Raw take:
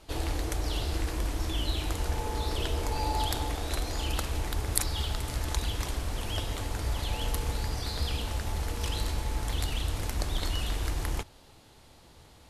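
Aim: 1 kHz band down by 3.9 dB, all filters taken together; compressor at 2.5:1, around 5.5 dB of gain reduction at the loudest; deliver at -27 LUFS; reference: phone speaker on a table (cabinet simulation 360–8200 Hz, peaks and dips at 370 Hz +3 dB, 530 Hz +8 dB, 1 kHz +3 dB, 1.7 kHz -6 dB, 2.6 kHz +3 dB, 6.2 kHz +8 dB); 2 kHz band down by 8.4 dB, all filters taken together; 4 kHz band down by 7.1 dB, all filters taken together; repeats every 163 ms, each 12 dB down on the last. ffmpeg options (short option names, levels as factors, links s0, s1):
-af "equalizer=f=1000:t=o:g=-5.5,equalizer=f=2000:t=o:g=-6,equalizer=f=4000:t=o:g=-8.5,acompressor=threshold=0.0251:ratio=2.5,highpass=f=360:w=0.5412,highpass=f=360:w=1.3066,equalizer=f=370:t=q:w=4:g=3,equalizer=f=530:t=q:w=4:g=8,equalizer=f=1000:t=q:w=4:g=3,equalizer=f=1700:t=q:w=4:g=-6,equalizer=f=2600:t=q:w=4:g=3,equalizer=f=6200:t=q:w=4:g=8,lowpass=f=8200:w=0.5412,lowpass=f=8200:w=1.3066,aecho=1:1:163|326|489:0.251|0.0628|0.0157,volume=5.31"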